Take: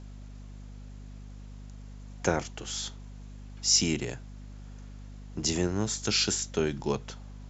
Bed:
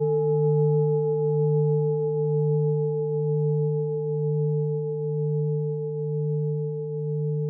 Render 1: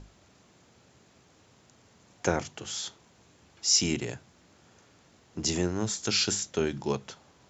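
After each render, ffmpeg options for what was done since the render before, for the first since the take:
-af "bandreject=f=50:t=h:w=6,bandreject=f=100:t=h:w=6,bandreject=f=150:t=h:w=6,bandreject=f=200:t=h:w=6,bandreject=f=250:t=h:w=6"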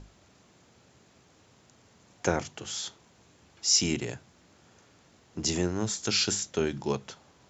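-af anull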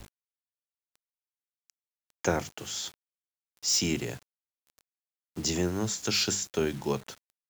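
-filter_complex "[0:a]acrossover=split=140|2400[s0][s1][s2];[s2]volume=13.3,asoftclip=hard,volume=0.075[s3];[s0][s1][s3]amix=inputs=3:normalize=0,acrusher=bits=7:mix=0:aa=0.000001"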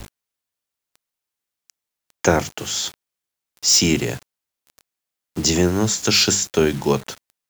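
-af "volume=3.55,alimiter=limit=0.794:level=0:latency=1"

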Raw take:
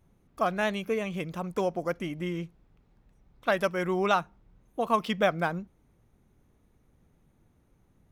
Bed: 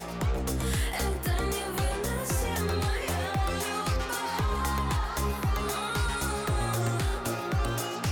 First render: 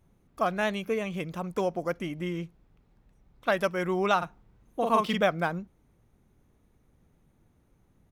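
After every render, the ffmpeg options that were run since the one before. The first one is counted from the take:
-filter_complex "[0:a]asplit=3[s0][s1][s2];[s0]afade=t=out:st=4.21:d=0.02[s3];[s1]asplit=2[s4][s5];[s5]adelay=44,volume=0.794[s6];[s4][s6]amix=inputs=2:normalize=0,afade=t=in:st=4.21:d=0.02,afade=t=out:st=5.2:d=0.02[s7];[s2]afade=t=in:st=5.2:d=0.02[s8];[s3][s7][s8]amix=inputs=3:normalize=0"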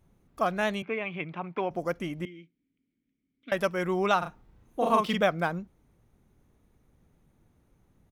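-filter_complex "[0:a]asettb=1/sr,asplit=3[s0][s1][s2];[s0]atrim=end=0.824[s3];[s1]atrim=start=0.82:end=1.71,asetpts=PTS-STARTPTS,afade=t=in:d=0.004:c=qsin,afade=t=out:st=0.886:d=0.004:c=qsin,highpass=f=130:w=0.5412,highpass=f=130:w=1.3066,equalizer=f=200:t=q:w=4:g=-7,equalizer=f=500:t=q:w=4:g=-8,equalizer=f=850:t=q:w=4:g=3,equalizer=f=2300:t=q:w=4:g=7,lowpass=f=3200:w=0.5412,lowpass=f=3200:w=1.3066[s4];[s2]atrim=start=1.706[s5];[s3][s4]acrossfade=d=0.004:c1=hsin:c2=qsin[s6];[s6][s5]acrossfade=d=0.004:c1=qsin:c2=hsin,asettb=1/sr,asplit=3[s7][s8][s9];[s7]atrim=end=2.254[s10];[s8]atrim=start=2.25:end=3.52,asetpts=PTS-STARTPTS,afade=t=in:d=0.004:c=qsin,afade=t=out:st=1.266:d=0.004:c=qsin,asplit=3[s11][s12][s13];[s11]bandpass=f=270:t=q:w=8,volume=1[s14];[s12]bandpass=f=2290:t=q:w=8,volume=0.501[s15];[s13]bandpass=f=3010:t=q:w=8,volume=0.355[s16];[s14][s15][s16]amix=inputs=3:normalize=0[s17];[s9]atrim=start=3.516[s18];[s10][s17]acrossfade=d=0.004:c1=hsin:c2=qsin[s19];[s19][s18]acrossfade=d=0.004:c1=qsin:c2=hsin,asplit=3[s20][s21][s22];[s20]afade=t=out:st=4.25:d=0.02[s23];[s21]asplit=2[s24][s25];[s25]adelay=32,volume=0.708[s26];[s24][s26]amix=inputs=2:normalize=0,afade=t=in:st=4.25:d=0.02,afade=t=out:st=4.94:d=0.02[s27];[s22]afade=t=in:st=4.94:d=0.02[s28];[s23][s27][s28]amix=inputs=3:normalize=0"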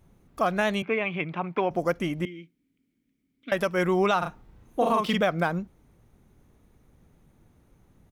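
-af "acontrast=36,alimiter=limit=0.2:level=0:latency=1:release=127"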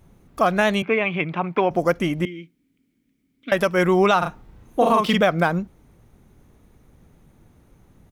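-af "volume=2"

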